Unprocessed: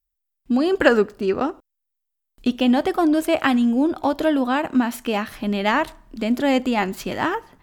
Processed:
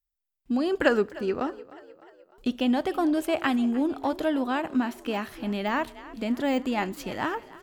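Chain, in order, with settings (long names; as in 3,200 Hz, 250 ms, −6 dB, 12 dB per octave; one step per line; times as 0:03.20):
on a send: echo with shifted repeats 303 ms, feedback 54%, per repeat +38 Hz, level −19 dB
0:04.80–0:06.77: on the sum: de-essing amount 70%
level −6.5 dB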